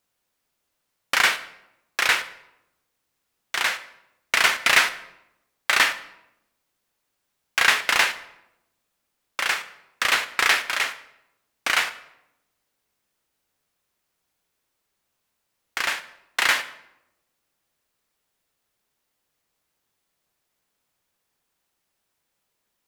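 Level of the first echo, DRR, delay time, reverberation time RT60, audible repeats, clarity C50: no echo audible, 11.0 dB, no echo audible, 0.85 s, no echo audible, 14.5 dB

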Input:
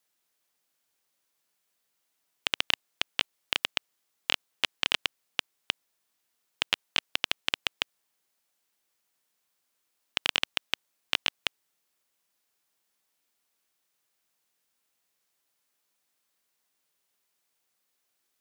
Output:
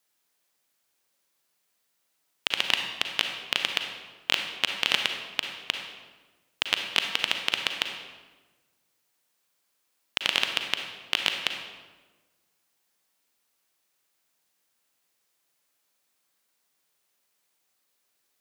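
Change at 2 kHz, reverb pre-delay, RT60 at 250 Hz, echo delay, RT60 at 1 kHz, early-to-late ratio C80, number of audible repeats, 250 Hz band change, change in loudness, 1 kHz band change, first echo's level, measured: +3.5 dB, 36 ms, 1.5 s, no echo audible, 1.2 s, 7.0 dB, no echo audible, +3.5 dB, +3.0 dB, +3.5 dB, no echo audible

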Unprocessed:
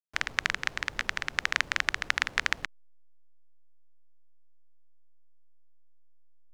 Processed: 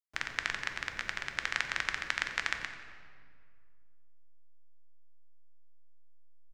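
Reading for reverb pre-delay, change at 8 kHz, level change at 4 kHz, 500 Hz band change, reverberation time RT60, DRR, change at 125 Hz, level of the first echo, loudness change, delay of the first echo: 3 ms, −5.5 dB, −5.0 dB, −4.5 dB, 2.1 s, 5.5 dB, −4.5 dB, −15.5 dB, −5.0 dB, 90 ms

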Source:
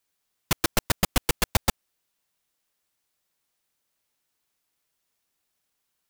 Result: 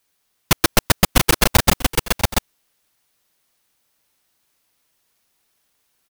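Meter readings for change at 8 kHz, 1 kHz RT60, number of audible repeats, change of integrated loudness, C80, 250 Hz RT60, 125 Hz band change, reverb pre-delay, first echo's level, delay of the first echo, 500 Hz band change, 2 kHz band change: +9.5 dB, no reverb audible, 2, +8.5 dB, no reverb audible, no reverb audible, +10.0 dB, no reverb audible, −17.5 dB, 643 ms, +10.0 dB, +10.0 dB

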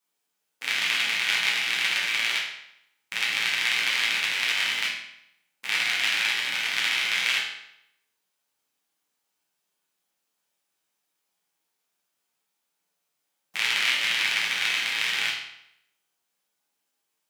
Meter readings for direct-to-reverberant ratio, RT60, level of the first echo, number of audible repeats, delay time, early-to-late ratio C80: −6.5 dB, 0.75 s, no echo audible, no echo audible, no echo audible, 6.5 dB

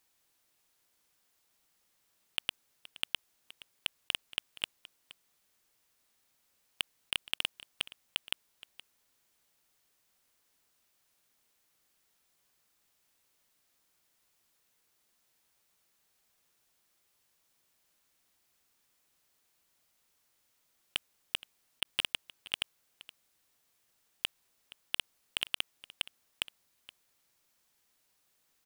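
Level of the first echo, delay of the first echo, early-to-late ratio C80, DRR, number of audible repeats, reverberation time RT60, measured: −18.5 dB, 471 ms, no reverb audible, no reverb audible, 1, no reverb audible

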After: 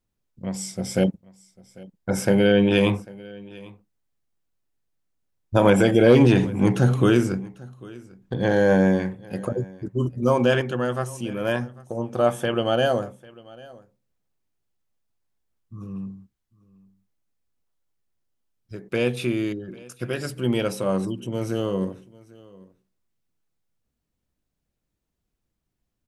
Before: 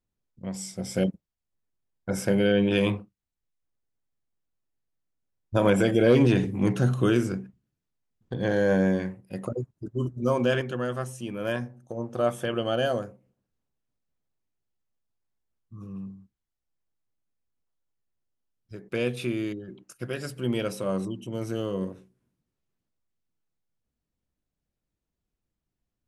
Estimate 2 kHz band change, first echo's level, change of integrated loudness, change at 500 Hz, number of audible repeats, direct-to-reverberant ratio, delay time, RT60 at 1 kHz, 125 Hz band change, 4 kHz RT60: +4.5 dB, −22.5 dB, +4.5 dB, +4.5 dB, 1, no reverb audible, 796 ms, no reverb audible, +4.5 dB, no reverb audible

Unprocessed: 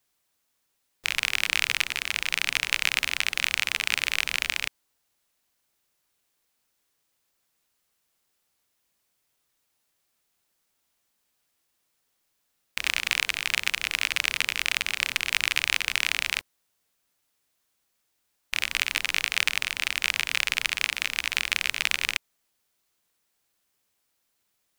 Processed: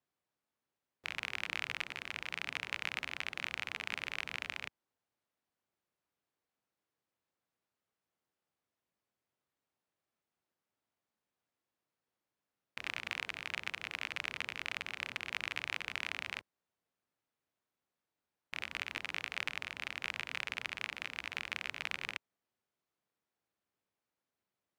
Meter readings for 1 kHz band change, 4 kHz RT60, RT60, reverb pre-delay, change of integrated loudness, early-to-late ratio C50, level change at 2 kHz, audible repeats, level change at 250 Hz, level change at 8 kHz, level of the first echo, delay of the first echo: −9.0 dB, no reverb audible, no reverb audible, no reverb audible, −14.0 dB, no reverb audible, −13.0 dB, no echo audible, −6.5 dB, −22.0 dB, no echo audible, no echo audible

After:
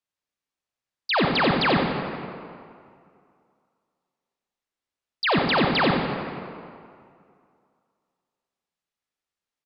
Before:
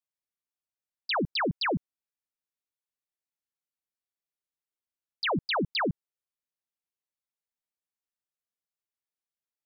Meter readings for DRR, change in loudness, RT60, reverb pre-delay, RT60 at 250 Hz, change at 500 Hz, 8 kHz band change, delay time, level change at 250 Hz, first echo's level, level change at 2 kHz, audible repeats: 0.5 dB, +7.0 dB, 2.3 s, 32 ms, 2.2 s, +8.5 dB, can't be measured, 90 ms, +8.5 dB, −6.0 dB, +8.0 dB, 1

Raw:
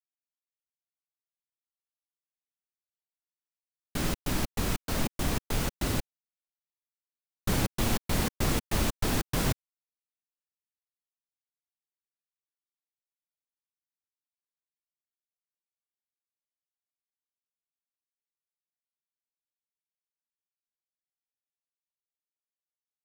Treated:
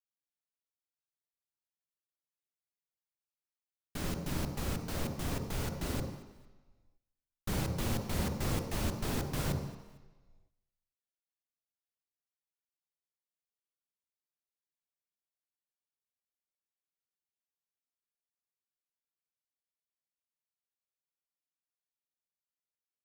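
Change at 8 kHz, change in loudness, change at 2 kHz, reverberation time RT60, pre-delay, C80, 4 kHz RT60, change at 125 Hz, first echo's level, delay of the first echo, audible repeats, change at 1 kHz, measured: −7.5 dB, −5.5 dB, −7.5 dB, 1.2 s, 38 ms, 8.0 dB, 1.2 s, −3.5 dB, −21.0 dB, 226 ms, 2, −6.0 dB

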